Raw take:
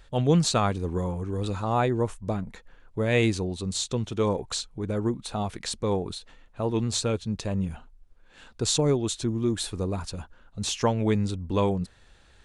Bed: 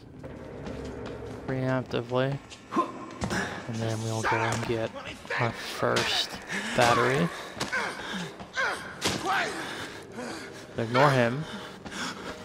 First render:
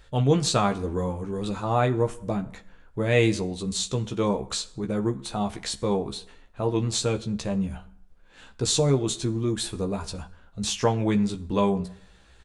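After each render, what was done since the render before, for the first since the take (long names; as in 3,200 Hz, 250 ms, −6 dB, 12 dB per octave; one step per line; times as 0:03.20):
double-tracking delay 15 ms −5 dB
dense smooth reverb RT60 0.7 s, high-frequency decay 0.7×, DRR 13.5 dB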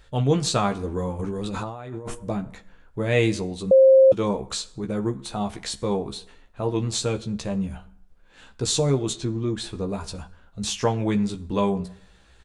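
0:01.19–0:02.15: compressor whose output falls as the input rises −32 dBFS
0:03.71–0:04.12: beep over 531 Hz −9.5 dBFS
0:09.13–0:09.89: high-frequency loss of the air 67 metres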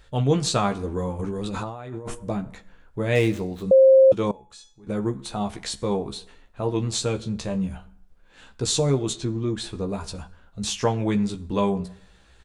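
0:03.15–0:03.66: running median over 9 samples
0:04.31–0:04.87: tuned comb filter 850 Hz, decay 0.35 s, mix 90%
0:07.16–0:07.69: double-tracking delay 27 ms −10.5 dB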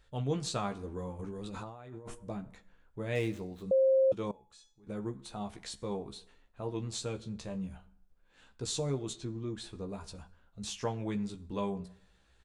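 level −12 dB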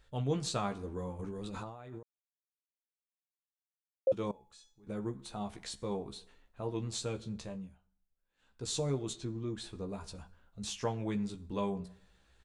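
0:02.03–0:04.07: silence
0:07.38–0:08.76: duck −16.5 dB, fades 0.38 s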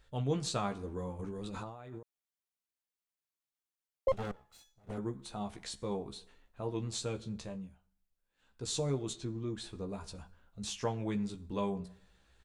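0:04.08–0:04.98: lower of the sound and its delayed copy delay 1.5 ms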